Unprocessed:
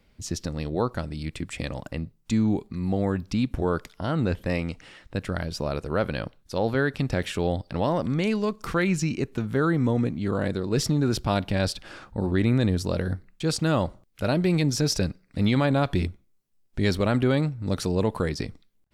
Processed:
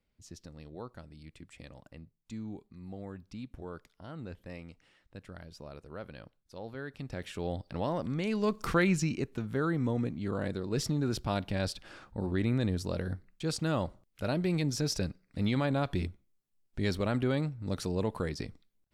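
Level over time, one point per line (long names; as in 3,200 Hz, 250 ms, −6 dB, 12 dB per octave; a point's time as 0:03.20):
0:06.76 −18 dB
0:07.61 −8 dB
0:08.27 −8 dB
0:08.57 0 dB
0:09.36 −7.5 dB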